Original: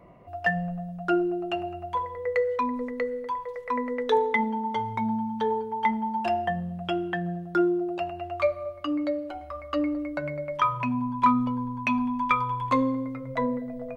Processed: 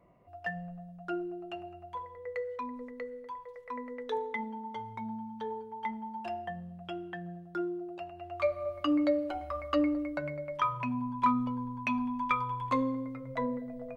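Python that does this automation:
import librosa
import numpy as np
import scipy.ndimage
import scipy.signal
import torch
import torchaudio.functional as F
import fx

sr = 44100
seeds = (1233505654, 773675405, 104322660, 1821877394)

y = fx.gain(x, sr, db=fx.line((8.11, -11.5), (8.76, 0.5), (9.63, 0.5), (10.41, -6.0)))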